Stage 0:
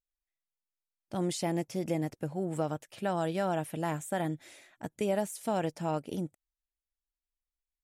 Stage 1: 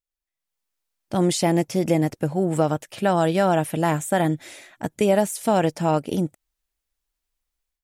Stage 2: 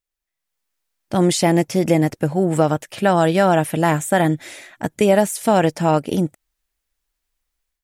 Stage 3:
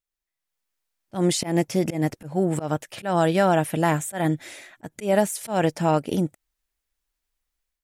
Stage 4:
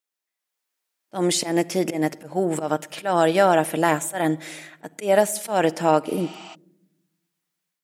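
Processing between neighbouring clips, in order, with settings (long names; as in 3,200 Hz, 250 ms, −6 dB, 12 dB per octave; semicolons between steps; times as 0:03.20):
automatic gain control gain up to 11.5 dB
parametric band 1,800 Hz +2.5 dB; level +4 dB
volume swells 146 ms; level −4 dB
convolution reverb RT60 0.95 s, pre-delay 7 ms, DRR 15.5 dB; healed spectral selection 0:06.11–0:06.52, 630–8,500 Hz before; high-pass filter 280 Hz 12 dB per octave; level +3 dB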